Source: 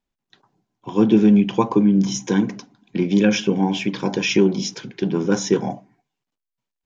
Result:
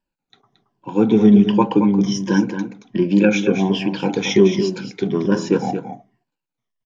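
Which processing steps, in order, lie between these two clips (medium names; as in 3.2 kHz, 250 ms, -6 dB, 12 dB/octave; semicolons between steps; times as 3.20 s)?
drifting ripple filter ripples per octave 1.3, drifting -1.3 Hz, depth 13 dB; low-pass 3.6 kHz 6 dB/octave; delay 224 ms -8.5 dB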